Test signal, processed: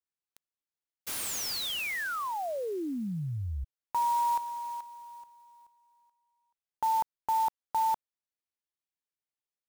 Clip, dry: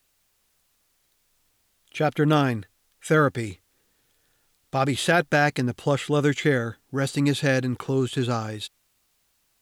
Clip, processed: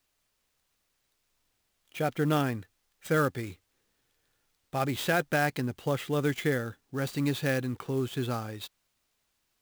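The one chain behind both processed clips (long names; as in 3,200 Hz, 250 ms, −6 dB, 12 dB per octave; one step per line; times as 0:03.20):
converter with an unsteady clock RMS 0.021 ms
level −6.5 dB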